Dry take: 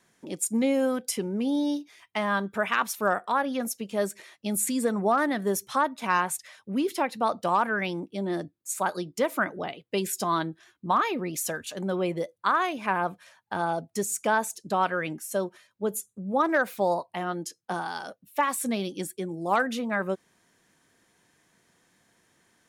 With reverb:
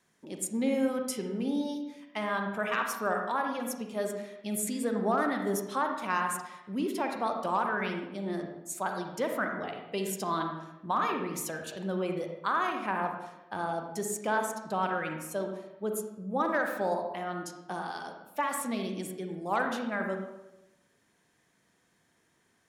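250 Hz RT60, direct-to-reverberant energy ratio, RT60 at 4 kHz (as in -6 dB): 1.0 s, 3.0 dB, 0.65 s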